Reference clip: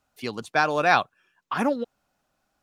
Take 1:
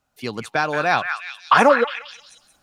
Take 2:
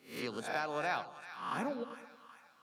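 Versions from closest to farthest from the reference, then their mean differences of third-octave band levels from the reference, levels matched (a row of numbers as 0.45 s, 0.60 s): 1, 2; 5.0 dB, 7.5 dB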